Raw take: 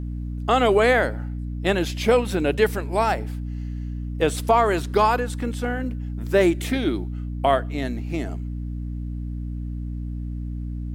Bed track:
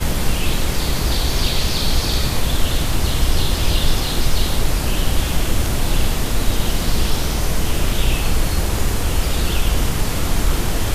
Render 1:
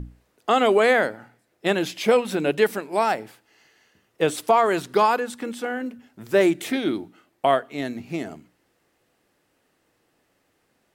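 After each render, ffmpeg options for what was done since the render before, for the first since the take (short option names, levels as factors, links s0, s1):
-af "bandreject=f=60:t=h:w=6,bandreject=f=120:t=h:w=6,bandreject=f=180:t=h:w=6,bandreject=f=240:t=h:w=6,bandreject=f=300:t=h:w=6"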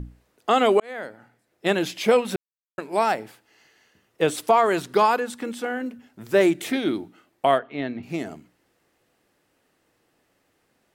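-filter_complex "[0:a]asettb=1/sr,asplit=3[s0][s1][s2];[s0]atrim=end=7.584[s3];[s1]atrim=start=7.58:end=8.03,asetpts=PTS-STARTPTS,afade=t=in:d=0.004:c=qsin,afade=t=out:st=0.446:d=0.004:c=qsin,lowpass=f=3600:w=0.5412,lowpass=f=3600:w=1.3066[s4];[s2]atrim=start=8.026[s5];[s3][s4]acrossfade=d=0.004:c1=hsin:c2=qsin[s6];[s6][s5]acrossfade=d=0.004:c1=qsin:c2=hsin,asplit=4[s7][s8][s9][s10];[s7]atrim=end=0.8,asetpts=PTS-STARTPTS,afade=t=out:st=0.796:d=0.004:c=hsin[s11];[s8]atrim=start=0.8:end=2.36,asetpts=PTS-STARTPTS,afade=t=in:d=0.89,afade=t=out:st=1.556:d=0.004:c=hsin[s12];[s9]atrim=start=2.36:end=2.78,asetpts=PTS-STARTPTS,volume=0[s13];[s10]atrim=start=2.78,asetpts=PTS-STARTPTS,afade=t=in:d=0.004:c=hsin[s14];[s11][s12][s13][s14]concat=n=4:v=0:a=1"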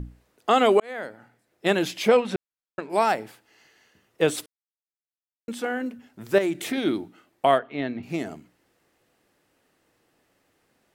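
-filter_complex "[0:a]asettb=1/sr,asplit=3[s0][s1][s2];[s0]atrim=end=2.084[s3];[s1]atrim=start=2.08:end=2.9,asetpts=PTS-STARTPTS,afade=t=in:d=0.004:c=qsin,afade=t=out:st=0.816:d=0.004:c=qsin,adynamicsmooth=sensitivity=1:basefreq=5700[s4];[s2]atrim=start=2.896[s5];[s3][s4]acrossfade=d=0.004:c1=hsin:c2=qsin[s6];[s6][s5]acrossfade=d=0.004:c1=qsin:c2=hsin,asettb=1/sr,asplit=3[s7][s8][s9];[s7]atrim=end=6.384[s10];[s8]atrim=start=6.38:end=6.78,asetpts=PTS-STARTPTS,afade=t=in:d=0.004:c=qsin,afade=t=out:st=0.396:d=0.004:c=qsin,acompressor=threshold=0.0794:ratio=4:attack=3.2:release=140:knee=1:detection=peak[s11];[s9]atrim=start=6.776[s12];[s10][s11]acrossfade=d=0.004:c1=hsin:c2=qsin[s13];[s13][s12]acrossfade=d=0.004:c1=qsin:c2=hsin,asplit=3[s14][s15][s16];[s14]atrim=end=4.46,asetpts=PTS-STARTPTS,afade=t=out:st=4.456:d=0.004:c=hsin[s17];[s15]atrim=start=4.46:end=5.48,asetpts=PTS-STARTPTS,volume=0[s18];[s16]atrim=start=5.48,asetpts=PTS-STARTPTS,afade=t=in:d=0.004:c=hsin[s19];[s17][s18][s19]concat=n=3:v=0:a=1"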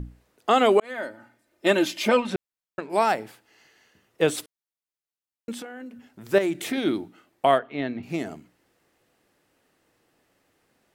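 -filter_complex "[0:a]asettb=1/sr,asplit=3[s0][s1][s2];[s0]atrim=end=0.844[s3];[s1]atrim=start=0.84:end=2.3,asetpts=PTS-STARTPTS,afade=t=in:d=0.004:c=qsin,afade=t=out:st=1.456:d=0.004:c=qsin,aecho=1:1:3.3:0.65,atrim=end_sample=64386[s4];[s2]atrim=start=2.296[s5];[s3][s4]acrossfade=d=0.004:c1=hsin:c2=qsin[s6];[s6][s5]acrossfade=d=0.004:c1=qsin:c2=hsin,asettb=1/sr,asplit=3[s7][s8][s9];[s7]atrim=end=5.624[s10];[s8]atrim=start=5.62:end=6.26,asetpts=PTS-STARTPTS,afade=t=in:d=0.004:c=qsin,afade=t=out:st=0.636:d=0.004:c=qsin,acompressor=threshold=0.0112:ratio=3:attack=3.2:release=140:knee=1:detection=peak[s11];[s9]atrim=start=6.256[s12];[s10][s11]acrossfade=d=0.004:c1=hsin:c2=qsin[s13];[s13][s12]acrossfade=d=0.004:c1=qsin:c2=hsin"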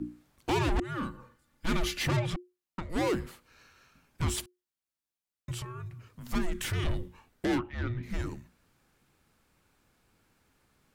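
-af "aeval=exprs='(tanh(17.8*val(0)+0.3)-tanh(0.3))/17.8':c=same,afreqshift=-360"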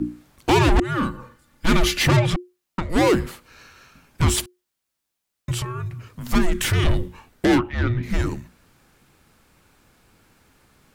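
-af "volume=3.76"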